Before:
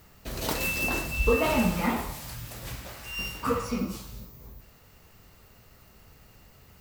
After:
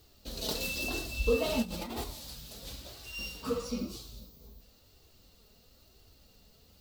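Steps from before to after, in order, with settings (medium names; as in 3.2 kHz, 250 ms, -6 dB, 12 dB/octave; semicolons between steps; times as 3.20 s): graphic EQ 500/1000/2000/4000 Hz +3/-5/-9/+11 dB; 1.62–2.04 s: compressor with a negative ratio -32 dBFS, ratio -1; flange 1 Hz, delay 2.5 ms, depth 2.3 ms, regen -27%; trim -3 dB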